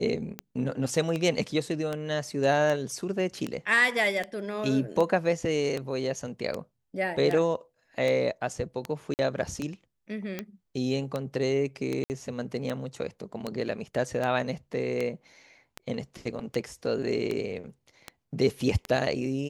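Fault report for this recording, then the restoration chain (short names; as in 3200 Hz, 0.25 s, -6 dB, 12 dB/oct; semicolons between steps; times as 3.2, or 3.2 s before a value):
tick 78 rpm -17 dBFS
9.14–9.19 gap 49 ms
12.04–12.1 gap 59 ms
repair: de-click; interpolate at 9.14, 49 ms; interpolate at 12.04, 59 ms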